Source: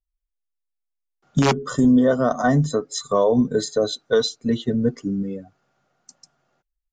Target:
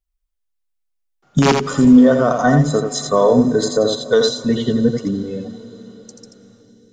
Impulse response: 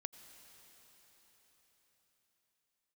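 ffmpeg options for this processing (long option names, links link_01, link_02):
-filter_complex "[0:a]asplit=2[link_01][link_02];[1:a]atrim=start_sample=2205,adelay=84[link_03];[link_02][link_03]afir=irnorm=-1:irlink=0,volume=-1.5dB[link_04];[link_01][link_04]amix=inputs=2:normalize=0,volume=4dB"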